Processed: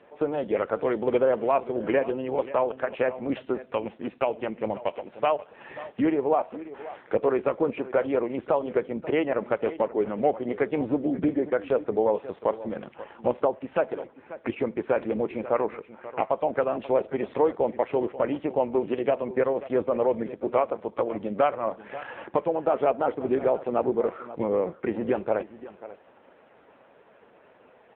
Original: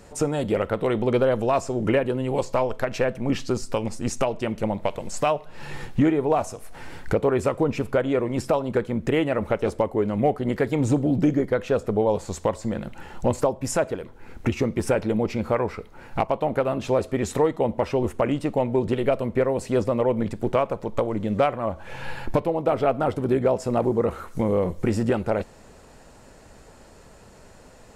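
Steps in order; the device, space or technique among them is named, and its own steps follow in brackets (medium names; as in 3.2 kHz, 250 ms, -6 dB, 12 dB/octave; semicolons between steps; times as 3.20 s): satellite phone (band-pass 310–3200 Hz; delay 536 ms -15.5 dB; AMR-NB 5.9 kbps 8 kHz)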